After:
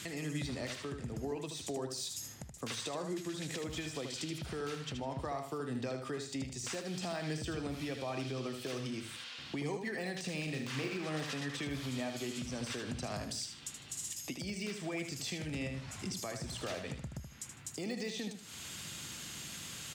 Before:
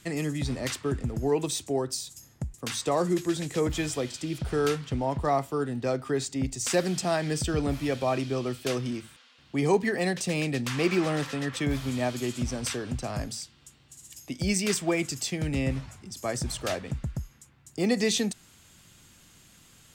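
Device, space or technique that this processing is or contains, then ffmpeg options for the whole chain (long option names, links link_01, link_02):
broadcast voice chain: -filter_complex "[0:a]highpass=82,deesser=0.85,acompressor=threshold=-41dB:ratio=4,equalizer=frequency=3900:width_type=o:width=2.5:gain=5.5,alimiter=level_in=13dB:limit=-24dB:level=0:latency=1:release=432,volume=-13dB,asettb=1/sr,asplit=3[link_01][link_02][link_03];[link_01]atrim=end=10.444[link_04];[link_02]atrim=start=10.44:end=10.97,asetpts=PTS-STARTPTS,afade=type=in:duration=0.004:curve=qsin,afade=type=out:start_time=0.526:duration=0.004:curve=qsin,asplit=2[link_05][link_06];[link_06]adelay=37,volume=-5dB[link_07];[link_05][link_07]amix=inputs=2:normalize=0,atrim=end_sample=23373[link_08];[link_03]atrim=start=10.966[link_09];[link_04][link_08]acrossfade=duration=0.004:curve1=hsin:curve2=qsin[link_10];[link_10][link_09]acrossfade=duration=0.004:curve1=qsin:curve2=hsin,aecho=1:1:77|154|231:0.447|0.121|0.0326,volume=7dB"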